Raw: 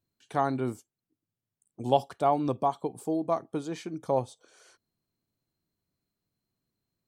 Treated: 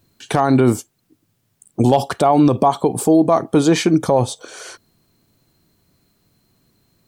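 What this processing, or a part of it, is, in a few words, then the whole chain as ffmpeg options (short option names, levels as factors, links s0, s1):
loud club master: -af "acompressor=threshold=0.0355:ratio=1.5,asoftclip=type=hard:threshold=0.15,alimiter=level_in=21.1:limit=0.891:release=50:level=0:latency=1,volume=0.668"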